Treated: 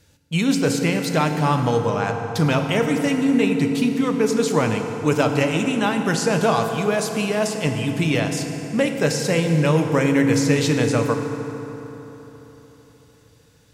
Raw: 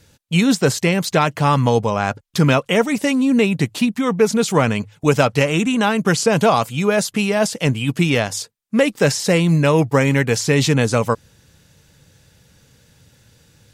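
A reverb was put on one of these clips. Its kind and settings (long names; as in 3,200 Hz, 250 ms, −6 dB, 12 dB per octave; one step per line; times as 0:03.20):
feedback delay network reverb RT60 3.9 s, high-frequency decay 0.55×, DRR 4 dB
level −5 dB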